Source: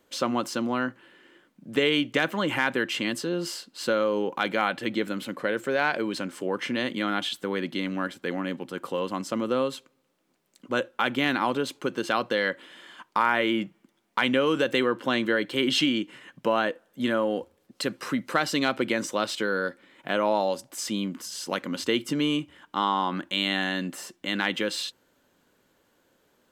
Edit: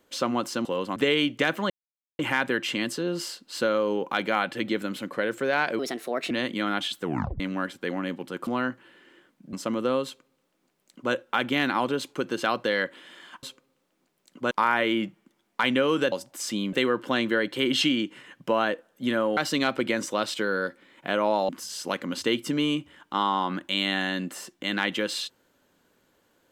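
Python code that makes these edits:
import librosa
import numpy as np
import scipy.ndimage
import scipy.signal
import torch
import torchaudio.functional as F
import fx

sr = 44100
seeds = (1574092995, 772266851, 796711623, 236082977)

y = fx.edit(x, sr, fx.swap(start_s=0.65, length_s=1.06, other_s=8.88, other_length_s=0.31),
    fx.insert_silence(at_s=2.45, length_s=0.49),
    fx.speed_span(start_s=6.05, length_s=0.67, speed=1.29),
    fx.tape_stop(start_s=7.44, length_s=0.37),
    fx.duplicate(start_s=9.71, length_s=1.08, to_s=13.09),
    fx.cut(start_s=17.34, length_s=1.04),
    fx.move(start_s=20.5, length_s=0.61, to_s=14.7), tone=tone)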